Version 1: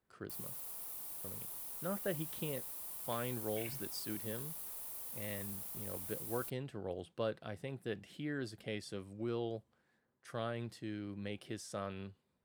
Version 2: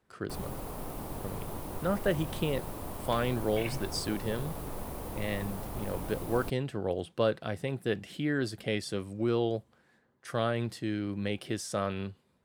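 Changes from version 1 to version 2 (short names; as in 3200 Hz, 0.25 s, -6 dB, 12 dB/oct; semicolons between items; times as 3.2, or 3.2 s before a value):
speech +10.0 dB; background: remove pre-emphasis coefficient 0.97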